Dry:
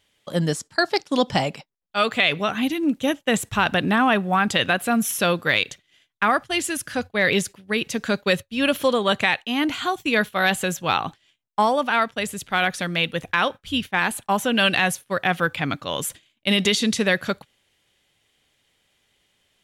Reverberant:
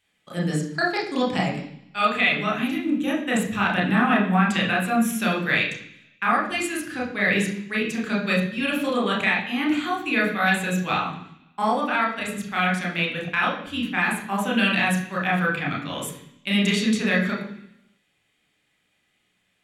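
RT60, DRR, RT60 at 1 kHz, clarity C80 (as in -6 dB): 0.70 s, -3.0 dB, 0.70 s, 9.5 dB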